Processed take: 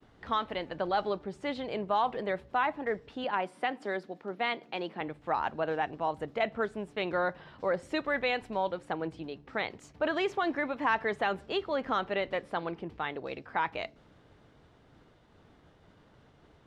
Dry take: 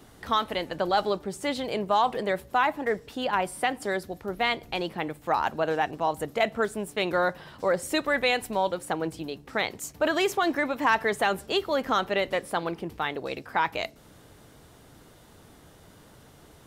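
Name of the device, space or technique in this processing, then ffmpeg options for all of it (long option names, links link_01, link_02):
hearing-loss simulation: -filter_complex "[0:a]asettb=1/sr,asplit=3[link_01][link_02][link_03];[link_01]atrim=end=3.244[link_04];[link_02]atrim=start=3.24:end=5.01,asetpts=PTS-STARTPTS,afade=type=in:duration=0.004:curve=qsin,afade=type=out:start_time=1.766:duration=0.004:curve=qsin,highpass=frequency=180:width=0.5412,highpass=frequency=180:width=1.3066[link_05];[link_03]atrim=start=5.006[link_06];[link_04][link_05]acrossfade=duration=0.004:curve1=hsin:curve2=qsin[link_07];[link_07][link_06]acrossfade=duration=0.004:curve1=qsin:curve2=hsin,lowpass=3400,agate=range=-33dB:threshold=-50dB:ratio=3:detection=peak,volume=-5dB"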